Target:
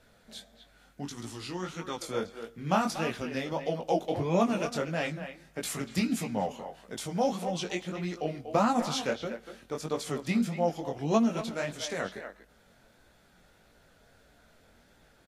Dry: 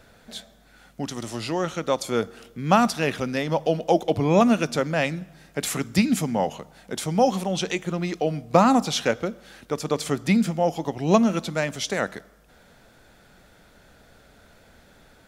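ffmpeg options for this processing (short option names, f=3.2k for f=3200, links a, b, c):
-filter_complex "[0:a]asplit=2[a][b];[b]adelay=240,highpass=300,lowpass=3.4k,asoftclip=type=hard:threshold=-12dB,volume=-9dB[c];[a][c]amix=inputs=2:normalize=0,flanger=delay=17:depth=6:speed=1.6,asettb=1/sr,asplit=3[d][e][f];[d]atrim=end=1.034[g];[e]atrim=start=1.03:end=2.01,asetpts=PTS-STARTPTS,afade=t=in:d=0.004:c=qsin,afade=t=out:st=0.976:d=0.004:c=qsin,equalizer=f=610:t=o:w=0.63:g=-12[h];[f]atrim=start=2.006[i];[g][h]acrossfade=d=0.004:c1=hsin:c2=qsin[j];[j][i]acrossfade=d=0.004:c1=qsin:c2=hsin,volume=-5dB" -ar 44100 -c:a libvorbis -b:a 48k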